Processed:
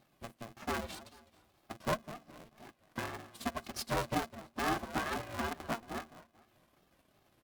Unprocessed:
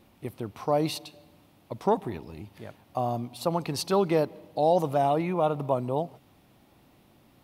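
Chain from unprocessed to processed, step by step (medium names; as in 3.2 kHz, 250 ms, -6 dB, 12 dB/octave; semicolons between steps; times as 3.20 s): comb filter that takes the minimum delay 2.2 ms; transient shaper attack +2 dB, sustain -10 dB; flange 0.86 Hz, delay 3.4 ms, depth 6.2 ms, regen -34%; feedback delay 218 ms, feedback 34%, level -16 dB; wow and flutter 150 cents; polarity switched at an audio rate 230 Hz; trim -4 dB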